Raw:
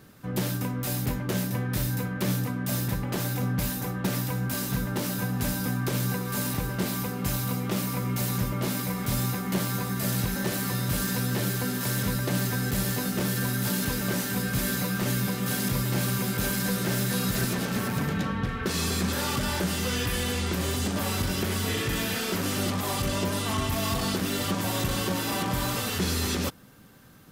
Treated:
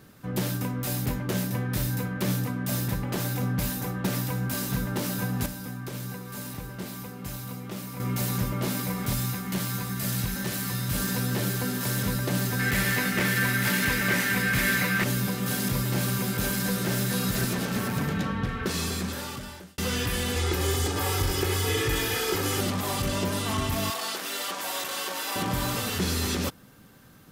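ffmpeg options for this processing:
ffmpeg -i in.wav -filter_complex "[0:a]asettb=1/sr,asplit=3[link_01][link_02][link_03];[link_01]atrim=end=9.134[link_04];[link_02]atrim=start=9.13:end=10.95,asetpts=PTS-STARTPTS,afade=type=in:duration=0.004:curve=qsin,afade=type=out:start_time=1.816:duration=0.004:curve=qsin,equalizer=frequency=500:width_type=o:width=2.3:gain=-6[link_05];[link_03]atrim=start=10.946[link_06];[link_04][link_05]acrossfade=duration=0.004:curve1=hsin:curve2=qsin[link_07];[link_07][link_06]acrossfade=duration=0.004:curve1=qsin:curve2=hsin,asettb=1/sr,asplit=3[link_08][link_09][link_10];[link_08]atrim=end=12.594[link_11];[link_09]atrim=start=12.59:end=15.04,asetpts=PTS-STARTPTS,afade=type=in:duration=0.004:curve=qsin,afade=type=out:start_time=2.446:duration=0.004:curve=qsin,equalizer=frequency=2000:width=1.4:gain=14.5[link_12];[link_10]atrim=start=15.036[link_13];[link_11][link_12]acrossfade=duration=0.004:curve1=hsin:curve2=qsin[link_14];[link_14][link_13]acrossfade=duration=0.004:curve1=qsin:curve2=hsin,asettb=1/sr,asplit=3[link_15][link_16][link_17];[link_15]atrim=end=20.364[link_18];[link_16]atrim=start=20.36:end=22.61,asetpts=PTS-STARTPTS,afade=type=in:duration=0.004:curve=qsin,afade=type=out:start_time=2.246:duration=0.004:curve=qsin,aecho=1:1:2.4:0.82,atrim=end_sample=99225[link_19];[link_17]atrim=start=22.606[link_20];[link_18][link_19]acrossfade=duration=0.004:curve1=hsin:curve2=qsin[link_21];[link_21][link_20]acrossfade=duration=0.004:curve1=qsin:curve2=hsin,asettb=1/sr,asplit=3[link_22][link_23][link_24];[link_22]atrim=end=23.904[link_25];[link_23]atrim=start=23.9:end=25.36,asetpts=PTS-STARTPTS,afade=type=in:duration=0.004:curve=qsin,afade=type=out:start_time=1.456:duration=0.004:curve=qsin,highpass=620[link_26];[link_24]atrim=start=25.356[link_27];[link_25][link_26]acrossfade=duration=0.004:curve1=hsin:curve2=qsin[link_28];[link_28][link_27]acrossfade=duration=0.004:curve1=qsin:curve2=hsin,asplit=4[link_29][link_30][link_31][link_32];[link_29]atrim=end=5.462[link_33];[link_30]atrim=start=5.458:end=8.002,asetpts=PTS-STARTPTS,volume=-8dB[link_34];[link_31]atrim=start=7.998:end=19.78,asetpts=PTS-STARTPTS,afade=type=out:start_time=10.632:duration=1.15[link_35];[link_32]atrim=start=19.78,asetpts=PTS-STARTPTS,afade=type=in:duration=0.004:curve=hsin[link_36];[link_33][link_34]acrossfade=duration=0.004:curve1=hsin:curve2=hsin[link_37];[link_35][link_36]concat=n=2:v=0:a=1[link_38];[link_37][link_38]acrossfade=duration=0.004:curve1=hsin:curve2=hsin" out.wav

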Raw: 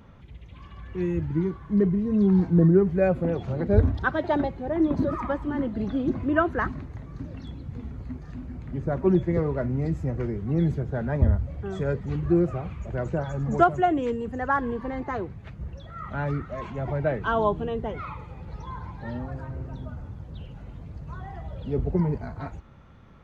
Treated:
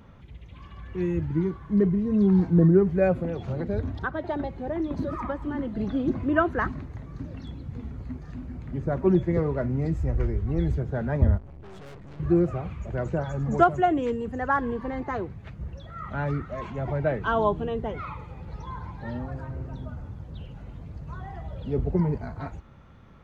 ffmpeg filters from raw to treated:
ffmpeg -i in.wav -filter_complex "[0:a]asettb=1/sr,asplit=3[link_01][link_02][link_03];[link_01]atrim=end=3.144[link_04];[link_02]atrim=start=3.14:end=5.78,asetpts=PTS-STARTPTS,afade=type=in:duration=0.004:curve=qsin,afade=type=out:start_time=2.636:duration=0.004:curve=qsin,acrossover=split=92|2100[link_05][link_06][link_07];[link_05]acompressor=threshold=-35dB:ratio=4[link_08];[link_06]acompressor=threshold=-27dB:ratio=4[link_09];[link_07]acompressor=threshold=-51dB:ratio=4[link_10];[link_08][link_09][link_10]amix=inputs=3:normalize=0[link_11];[link_03]atrim=start=5.776[link_12];[link_04][link_11]acrossfade=duration=0.004:curve1=hsin:curve2=qsin[link_13];[link_13][link_12]acrossfade=duration=0.004:curve1=qsin:curve2=hsin,asplit=3[link_14][link_15][link_16];[link_14]afade=type=out:start_time=9.96:duration=0.02[link_17];[link_15]asubboost=boost=10:cutoff=52,afade=type=in:start_time=9.96:duration=0.02,afade=type=out:start_time=10.77:duration=0.02[link_18];[link_16]afade=type=in:start_time=10.77:duration=0.02[link_19];[link_17][link_18][link_19]amix=inputs=3:normalize=0,asettb=1/sr,asplit=3[link_20][link_21][link_22];[link_20]atrim=end=11.384[link_23];[link_21]atrim=start=11.38:end=12.2,asetpts=PTS-STARTPTS,afade=type=in:duration=0.004:curve=qsin,afade=type=out:start_time=0.816:duration=0.004:curve=qsin,aeval=exprs='(tanh(141*val(0)+0.8)-tanh(0.8))/141':channel_layout=same[link_24];[link_22]atrim=start=12.196[link_25];[link_23][link_24]acrossfade=duration=0.004:curve1=hsin:curve2=qsin[link_26];[link_26][link_25]acrossfade=duration=0.004:curve1=qsin:curve2=hsin" out.wav

